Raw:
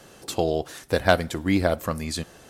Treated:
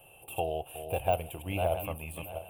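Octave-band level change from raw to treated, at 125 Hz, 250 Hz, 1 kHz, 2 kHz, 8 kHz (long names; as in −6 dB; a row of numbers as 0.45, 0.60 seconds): −7.5, −16.5, −5.0, −13.5, −10.0 decibels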